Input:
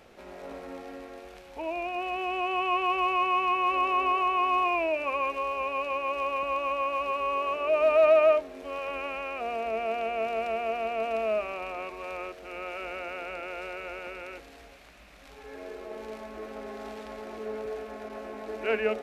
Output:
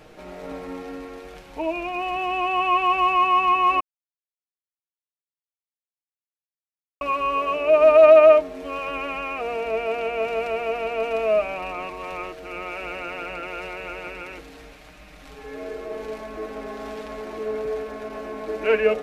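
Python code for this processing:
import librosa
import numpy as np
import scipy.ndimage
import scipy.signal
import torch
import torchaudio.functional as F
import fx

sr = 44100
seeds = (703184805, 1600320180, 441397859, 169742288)

y = fx.edit(x, sr, fx.silence(start_s=3.8, length_s=3.21), tone=tone)
y = fx.low_shelf(y, sr, hz=290.0, db=6.0)
y = y + 0.59 * np.pad(y, (int(6.5 * sr / 1000.0), 0))[:len(y)]
y = y * librosa.db_to_amplitude(4.0)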